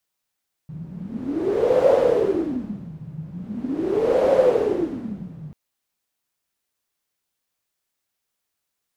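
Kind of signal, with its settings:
wind from filtered noise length 4.84 s, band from 150 Hz, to 530 Hz, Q 11, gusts 2, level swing 19.5 dB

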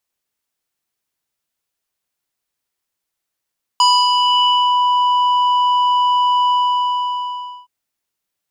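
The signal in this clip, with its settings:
subtractive voice square B5 12 dB per octave, low-pass 2,100 Hz, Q 2.8, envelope 1.5 octaves, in 0.98 s, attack 1.7 ms, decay 0.27 s, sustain −4 dB, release 1.17 s, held 2.70 s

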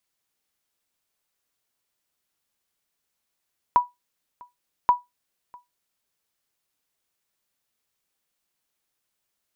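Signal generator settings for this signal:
ping with an echo 978 Hz, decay 0.18 s, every 1.13 s, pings 2, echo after 0.65 s, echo −27.5 dB −8.5 dBFS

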